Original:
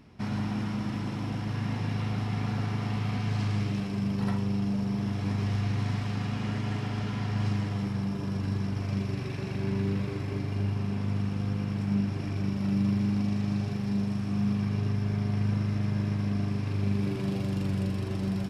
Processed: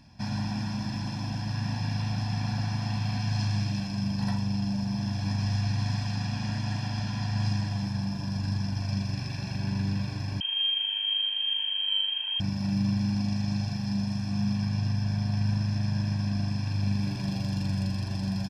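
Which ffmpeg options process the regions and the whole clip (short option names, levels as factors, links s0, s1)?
-filter_complex "[0:a]asettb=1/sr,asplit=3[s0][s1][s2];[s0]atrim=end=10.404[s3];[s1]atrim=start=10.4:end=12.4,asetpts=PTS-STARTPTS,afade=t=in:d=0.004:c=qsin,afade=t=out:st=1.996:d=0.004:c=qsin,adynamicsmooth=sensitivity=4:basefreq=2200,lowpass=f=2800:t=q:w=0.5098,lowpass=f=2800:t=q:w=0.6013,lowpass=f=2800:t=q:w=0.9,lowpass=f=2800:t=q:w=2.563,afreqshift=-3300[s4];[s2]atrim=start=12.396[s5];[s3][s4]acrossfade=d=0.004:c1=hsin:c2=qsin[s6];[s6][s5]acrossfade=d=0.004:c1=qsin:c2=hsin,equalizer=f=5200:w=2.1:g=12.5,aecho=1:1:1.2:0.85,volume=0.668"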